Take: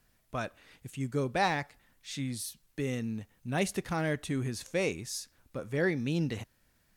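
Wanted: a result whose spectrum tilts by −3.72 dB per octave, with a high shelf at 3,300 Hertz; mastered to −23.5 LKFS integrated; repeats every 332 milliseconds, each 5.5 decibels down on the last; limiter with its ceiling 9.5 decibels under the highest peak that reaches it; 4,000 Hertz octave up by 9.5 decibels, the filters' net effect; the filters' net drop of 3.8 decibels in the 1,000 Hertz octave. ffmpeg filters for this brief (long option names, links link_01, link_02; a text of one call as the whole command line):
ffmpeg -i in.wav -af "equalizer=frequency=1000:width_type=o:gain=-6.5,highshelf=frequency=3300:gain=8,equalizer=frequency=4000:width_type=o:gain=6,alimiter=limit=-21.5dB:level=0:latency=1,aecho=1:1:332|664|996|1328|1660|1992|2324:0.531|0.281|0.149|0.079|0.0419|0.0222|0.0118,volume=9dB" out.wav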